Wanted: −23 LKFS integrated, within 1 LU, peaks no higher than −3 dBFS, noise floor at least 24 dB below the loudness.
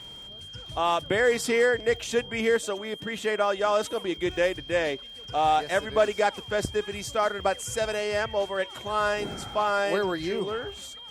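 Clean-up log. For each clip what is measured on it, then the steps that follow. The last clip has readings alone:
crackle rate 32 per second; interfering tone 3,200 Hz; level of the tone −41 dBFS; integrated loudness −26.5 LKFS; sample peak −12.5 dBFS; target loudness −23.0 LKFS
→ click removal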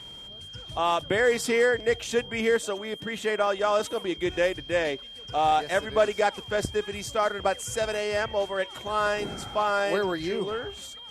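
crackle rate 0.090 per second; interfering tone 3,200 Hz; level of the tone −41 dBFS
→ notch filter 3,200 Hz, Q 30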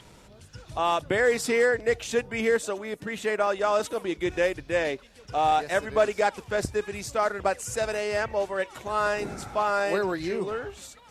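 interfering tone none found; integrated loudness −26.5 LKFS; sample peak −12.5 dBFS; target loudness −23.0 LKFS
→ level +3.5 dB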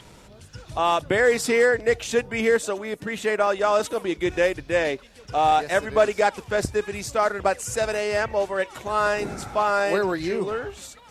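integrated loudness −23.0 LKFS; sample peak −9.0 dBFS; background noise floor −49 dBFS

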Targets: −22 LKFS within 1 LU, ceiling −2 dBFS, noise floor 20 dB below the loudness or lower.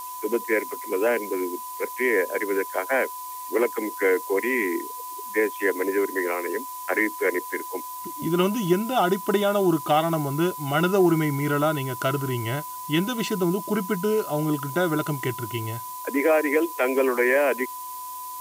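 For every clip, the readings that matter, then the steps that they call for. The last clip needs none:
interfering tone 1,000 Hz; level of the tone −34 dBFS; background noise floor −36 dBFS; target noise floor −45 dBFS; integrated loudness −24.5 LKFS; sample peak −9.0 dBFS; target loudness −22.0 LKFS
→ notch filter 1,000 Hz, Q 30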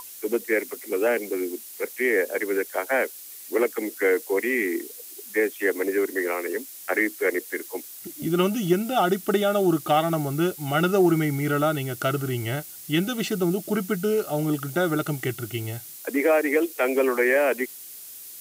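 interfering tone none found; background noise floor −42 dBFS; target noise floor −45 dBFS
→ broadband denoise 6 dB, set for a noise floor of −42 dBFS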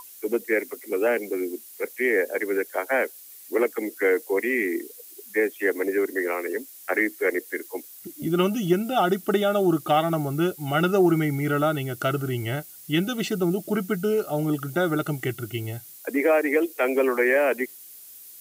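background noise floor −46 dBFS; integrated loudness −25.0 LKFS; sample peak −9.5 dBFS; target loudness −22.0 LKFS
→ level +3 dB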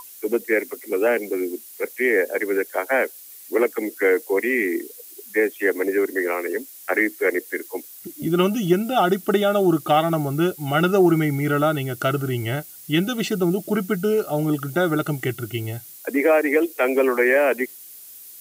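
integrated loudness −22.0 LKFS; sample peak −6.5 dBFS; background noise floor −43 dBFS

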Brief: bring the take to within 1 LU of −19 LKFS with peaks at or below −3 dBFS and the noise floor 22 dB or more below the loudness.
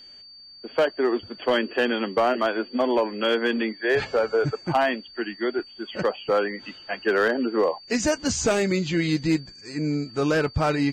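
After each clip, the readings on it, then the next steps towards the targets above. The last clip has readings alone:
share of clipped samples 0.6%; peaks flattened at −14.0 dBFS; interfering tone 4,600 Hz; level of the tone −44 dBFS; integrated loudness −24.5 LKFS; sample peak −14.0 dBFS; target loudness −19.0 LKFS
→ clipped peaks rebuilt −14 dBFS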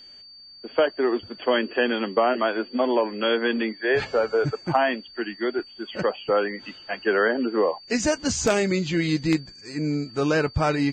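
share of clipped samples 0.0%; interfering tone 4,600 Hz; level of the tone −44 dBFS
→ notch filter 4,600 Hz, Q 30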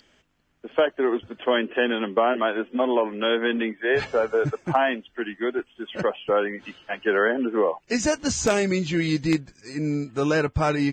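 interfering tone none found; integrated loudness −24.0 LKFS; sample peak −5.0 dBFS; target loudness −19.0 LKFS
→ level +5 dB
brickwall limiter −3 dBFS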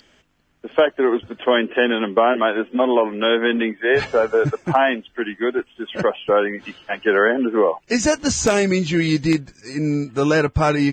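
integrated loudness −19.5 LKFS; sample peak −3.0 dBFS; background noise floor −58 dBFS

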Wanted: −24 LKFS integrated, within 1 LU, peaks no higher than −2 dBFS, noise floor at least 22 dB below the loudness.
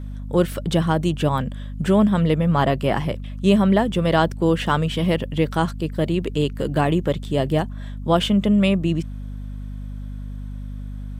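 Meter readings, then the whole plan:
mains hum 50 Hz; hum harmonics up to 250 Hz; level of the hum −29 dBFS; integrated loudness −21.0 LKFS; sample peak −4.0 dBFS; target loudness −24.0 LKFS
→ hum removal 50 Hz, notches 5
level −3 dB

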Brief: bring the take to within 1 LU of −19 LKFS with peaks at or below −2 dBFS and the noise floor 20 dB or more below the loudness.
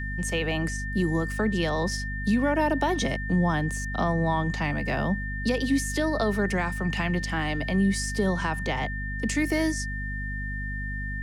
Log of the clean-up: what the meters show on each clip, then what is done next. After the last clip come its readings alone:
mains hum 50 Hz; hum harmonics up to 250 Hz; level of the hum −30 dBFS; interfering tone 1,800 Hz; level of the tone −34 dBFS; integrated loudness −27.0 LKFS; sample peak −11.5 dBFS; target loudness −19.0 LKFS
→ hum removal 50 Hz, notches 5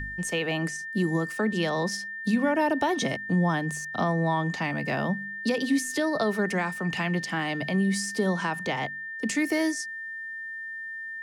mains hum none found; interfering tone 1,800 Hz; level of the tone −34 dBFS
→ notch filter 1,800 Hz, Q 30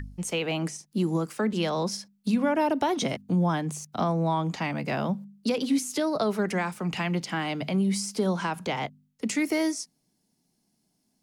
interfering tone none found; integrated loudness −28.0 LKFS; sample peak −13.0 dBFS; target loudness −19.0 LKFS
→ level +9 dB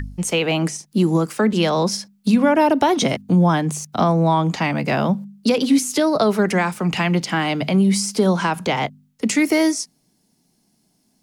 integrated loudness −19.0 LKFS; sample peak −4.0 dBFS; background noise floor −65 dBFS

